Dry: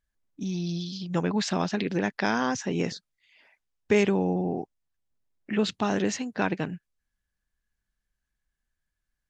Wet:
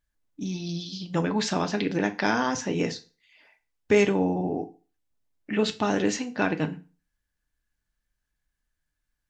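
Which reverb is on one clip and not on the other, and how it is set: FDN reverb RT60 0.35 s, low-frequency decay 1×, high-frequency decay 0.9×, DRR 6.5 dB; gain +1 dB

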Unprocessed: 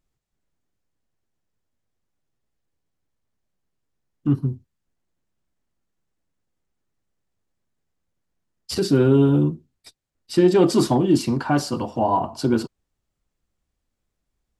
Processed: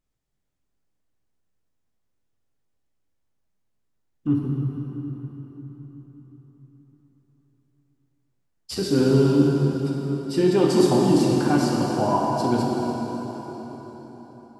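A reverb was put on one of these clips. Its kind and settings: plate-style reverb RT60 4.7 s, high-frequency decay 0.75×, DRR -2.5 dB; gain -4.5 dB

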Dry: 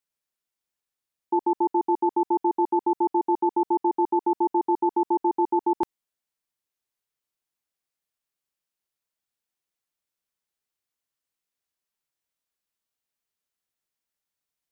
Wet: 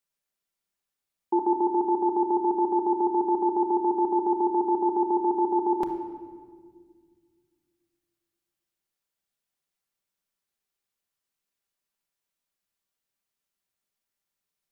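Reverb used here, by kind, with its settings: shoebox room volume 2600 m³, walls mixed, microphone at 1.2 m

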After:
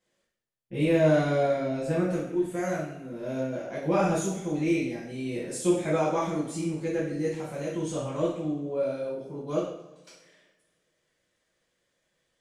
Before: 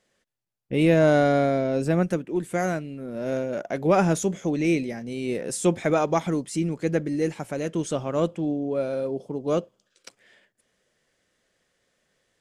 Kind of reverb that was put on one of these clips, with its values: two-slope reverb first 0.62 s, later 1.8 s, DRR -9.5 dB; gain -14 dB

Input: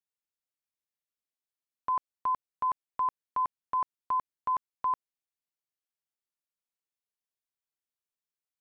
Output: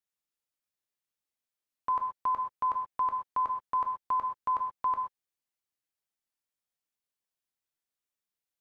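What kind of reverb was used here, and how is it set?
non-linear reverb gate 0.15 s flat, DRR 4 dB

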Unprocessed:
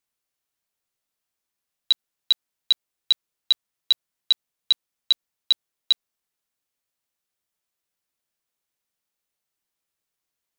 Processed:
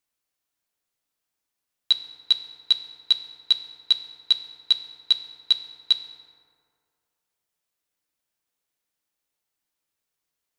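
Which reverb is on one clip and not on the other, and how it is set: FDN reverb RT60 2.2 s, low-frequency decay 0.9×, high-frequency decay 0.45×, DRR 8.5 dB

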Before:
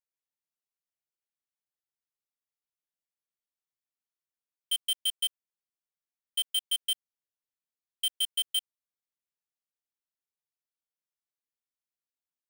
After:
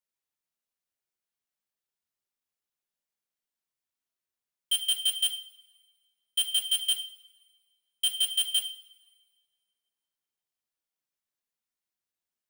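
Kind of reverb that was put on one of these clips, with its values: two-slope reverb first 0.55 s, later 1.9 s, from -20 dB, DRR 4 dB; gain +1.5 dB

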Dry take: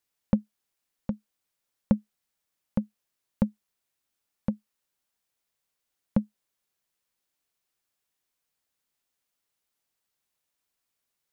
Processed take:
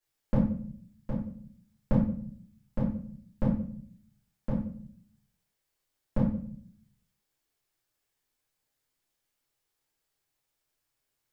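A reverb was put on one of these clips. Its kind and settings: shoebox room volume 69 m³, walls mixed, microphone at 2.9 m; gain -10.5 dB

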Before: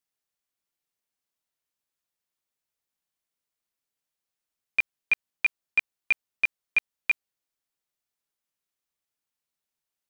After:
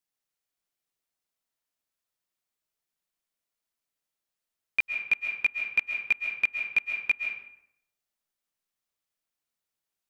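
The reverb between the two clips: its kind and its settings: digital reverb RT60 0.76 s, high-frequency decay 0.65×, pre-delay 95 ms, DRR 3.5 dB; gain -1.5 dB

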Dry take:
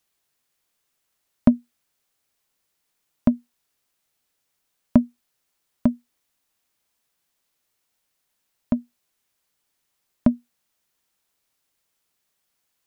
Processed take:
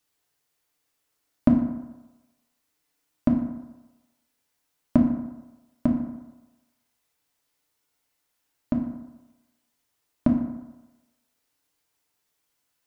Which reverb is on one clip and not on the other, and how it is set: FDN reverb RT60 1.1 s, low-frequency decay 0.8×, high-frequency decay 0.5×, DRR -1 dB; gain -3.5 dB

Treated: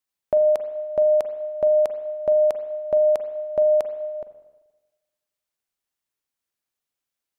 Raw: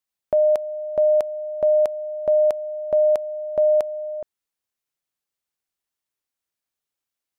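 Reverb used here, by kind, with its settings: spring tank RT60 1.2 s, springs 39/43/48 ms, chirp 65 ms, DRR 9.5 dB

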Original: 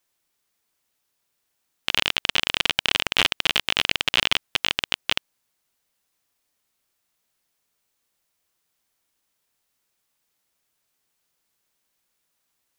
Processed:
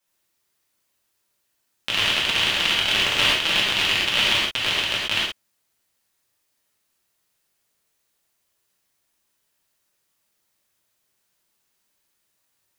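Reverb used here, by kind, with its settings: non-linear reverb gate 0.15 s flat, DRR -7 dB; gain -5 dB

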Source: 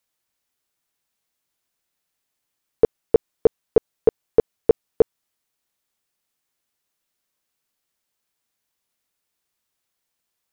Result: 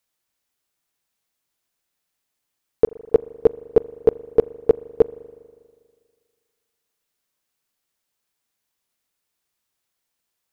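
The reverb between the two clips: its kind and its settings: spring tank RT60 1.9 s, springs 40 ms, chirp 25 ms, DRR 18.5 dB

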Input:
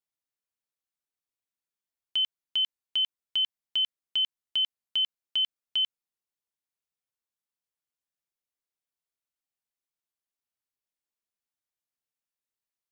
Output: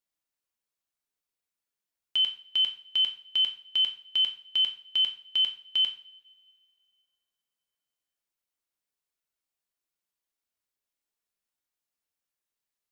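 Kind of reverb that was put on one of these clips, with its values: two-slope reverb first 0.42 s, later 2.5 s, from -28 dB, DRR 3 dB; gain +1 dB

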